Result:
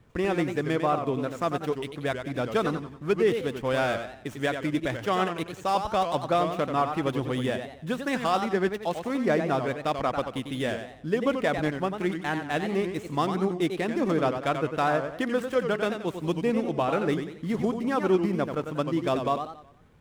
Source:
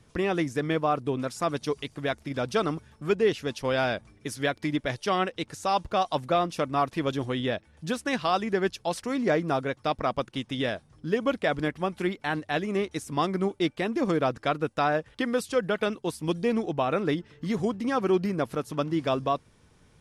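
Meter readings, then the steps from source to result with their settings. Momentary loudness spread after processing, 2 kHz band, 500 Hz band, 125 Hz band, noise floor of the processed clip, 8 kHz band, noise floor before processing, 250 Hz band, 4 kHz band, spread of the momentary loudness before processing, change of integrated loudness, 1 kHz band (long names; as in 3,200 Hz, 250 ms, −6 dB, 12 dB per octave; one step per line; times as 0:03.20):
6 LU, 0.0 dB, +1.0 dB, +1.0 dB, −46 dBFS, −3.0 dB, −61 dBFS, +1.0 dB, −2.0 dB, 6 LU, +0.5 dB, +0.5 dB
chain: running median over 9 samples
feedback echo with a swinging delay time 92 ms, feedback 40%, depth 170 cents, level −7.5 dB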